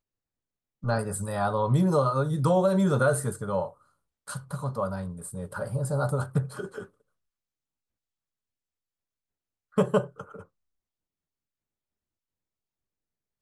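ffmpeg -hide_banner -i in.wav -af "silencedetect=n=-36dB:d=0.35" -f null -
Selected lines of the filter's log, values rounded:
silence_start: 0.00
silence_end: 0.84 | silence_duration: 0.84
silence_start: 3.68
silence_end: 4.28 | silence_duration: 0.59
silence_start: 6.83
silence_end: 9.78 | silence_duration: 2.94
silence_start: 10.40
silence_end: 13.42 | silence_duration: 3.01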